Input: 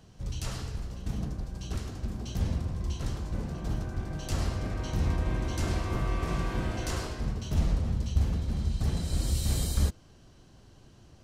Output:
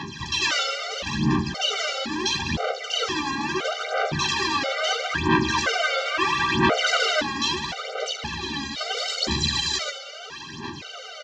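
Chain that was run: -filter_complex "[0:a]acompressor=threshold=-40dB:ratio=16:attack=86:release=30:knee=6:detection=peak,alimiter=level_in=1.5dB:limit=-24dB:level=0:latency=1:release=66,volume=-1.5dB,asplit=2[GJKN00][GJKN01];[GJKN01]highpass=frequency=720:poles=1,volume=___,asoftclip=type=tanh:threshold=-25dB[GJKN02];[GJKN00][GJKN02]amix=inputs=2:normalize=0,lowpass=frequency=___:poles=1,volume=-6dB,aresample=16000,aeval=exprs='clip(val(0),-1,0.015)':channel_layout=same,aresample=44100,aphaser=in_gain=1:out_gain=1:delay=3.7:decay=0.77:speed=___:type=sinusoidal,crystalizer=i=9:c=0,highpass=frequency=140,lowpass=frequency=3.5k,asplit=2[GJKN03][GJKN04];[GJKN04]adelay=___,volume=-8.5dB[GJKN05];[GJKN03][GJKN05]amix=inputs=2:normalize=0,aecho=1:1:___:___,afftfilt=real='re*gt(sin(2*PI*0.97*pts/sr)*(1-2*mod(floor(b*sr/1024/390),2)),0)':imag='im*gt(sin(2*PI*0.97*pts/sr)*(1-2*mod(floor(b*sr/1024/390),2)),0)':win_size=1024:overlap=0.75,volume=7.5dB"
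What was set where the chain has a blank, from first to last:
20dB, 2.4k, 0.75, 13, 207, 0.15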